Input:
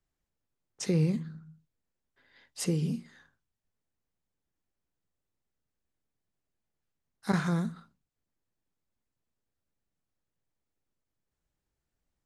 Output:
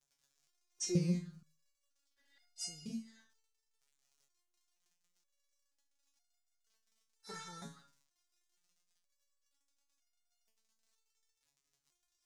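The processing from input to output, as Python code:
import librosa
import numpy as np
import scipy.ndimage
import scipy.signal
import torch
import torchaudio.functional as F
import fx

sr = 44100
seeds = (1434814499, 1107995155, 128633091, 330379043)

y = fx.dmg_crackle(x, sr, seeds[0], per_s=57.0, level_db=-53.0)
y = fx.peak_eq(y, sr, hz=6200.0, db=12.0, octaves=1.3)
y = fx.resonator_held(y, sr, hz=2.1, low_hz=140.0, high_hz=710.0)
y = y * librosa.db_to_amplitude(2.5)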